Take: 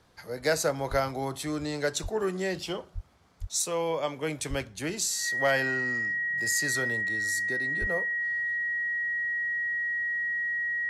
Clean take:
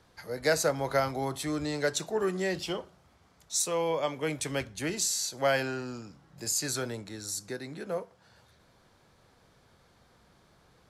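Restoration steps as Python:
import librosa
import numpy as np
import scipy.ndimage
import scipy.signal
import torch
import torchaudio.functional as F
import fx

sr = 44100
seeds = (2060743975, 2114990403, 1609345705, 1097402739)

y = fx.fix_declip(x, sr, threshold_db=-16.0)
y = fx.notch(y, sr, hz=1900.0, q=30.0)
y = fx.fix_deplosive(y, sr, at_s=(0.9, 2.02, 2.94, 3.4, 4.49, 7.8))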